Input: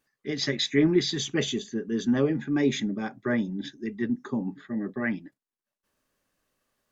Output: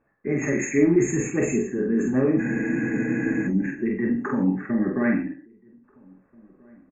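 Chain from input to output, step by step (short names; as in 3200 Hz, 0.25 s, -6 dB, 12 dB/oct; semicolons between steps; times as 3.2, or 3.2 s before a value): low-pass opened by the level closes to 1200 Hz, open at -19.5 dBFS; FFT band-reject 2700–6400 Hz; dynamic EQ 2100 Hz, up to -5 dB, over -42 dBFS, Q 0.88; in parallel at +2.5 dB: negative-ratio compressor -34 dBFS, ratio -1; on the sum: non-linear reverb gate 0.14 s flat, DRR 9.5 dB; flange 0.65 Hz, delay 8.5 ms, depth 8.4 ms, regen -54%; doubler 47 ms -3 dB; outdoor echo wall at 280 m, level -28 dB; spectral freeze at 2.42, 1.06 s; gain +4 dB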